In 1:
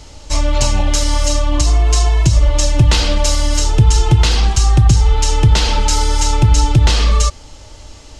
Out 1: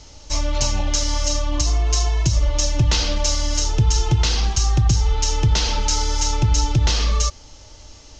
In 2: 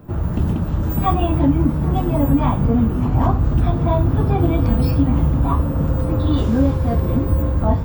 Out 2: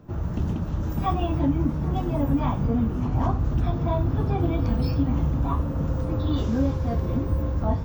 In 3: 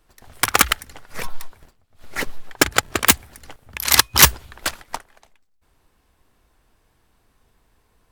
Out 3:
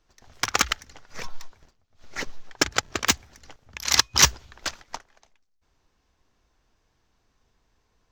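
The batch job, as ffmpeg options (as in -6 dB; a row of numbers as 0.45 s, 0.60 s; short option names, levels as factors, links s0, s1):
-af "highshelf=f=7800:t=q:w=3:g=-9,volume=0.447"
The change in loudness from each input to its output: -6.0 LU, -7.0 LU, -6.0 LU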